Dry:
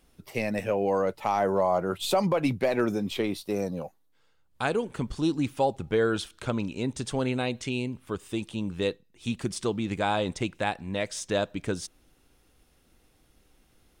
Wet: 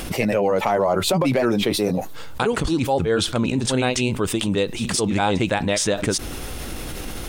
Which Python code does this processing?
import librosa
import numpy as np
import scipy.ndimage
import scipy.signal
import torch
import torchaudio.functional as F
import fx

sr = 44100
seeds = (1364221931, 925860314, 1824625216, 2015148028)

y = fx.stretch_grains(x, sr, factor=0.52, grain_ms=184.0)
y = fx.env_flatten(y, sr, amount_pct=70)
y = y * librosa.db_to_amplitude(4.0)